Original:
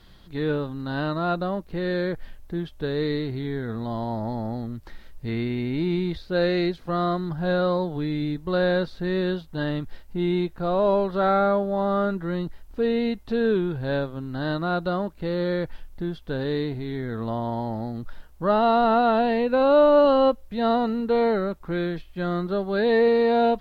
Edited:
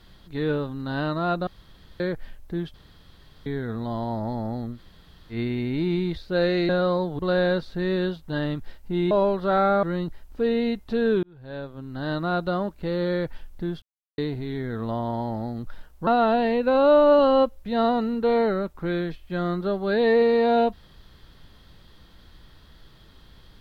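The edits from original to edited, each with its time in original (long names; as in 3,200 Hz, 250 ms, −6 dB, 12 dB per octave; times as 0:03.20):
0:01.47–0:02.00: fill with room tone
0:02.74–0:03.46: fill with room tone
0:04.75–0:05.34: fill with room tone, crossfade 0.10 s
0:06.69–0:07.49: remove
0:07.99–0:08.44: remove
0:10.36–0:10.82: remove
0:11.54–0:12.22: remove
0:13.62–0:14.63: fade in linear
0:16.21–0:16.57: silence
0:18.46–0:18.93: remove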